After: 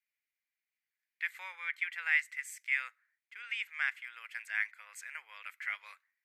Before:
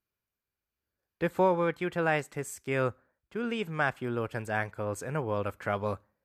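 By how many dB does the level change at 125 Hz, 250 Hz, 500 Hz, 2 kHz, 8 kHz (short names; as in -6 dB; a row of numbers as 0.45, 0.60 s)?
under -40 dB, under -40 dB, under -35 dB, +2.0 dB, -5.0 dB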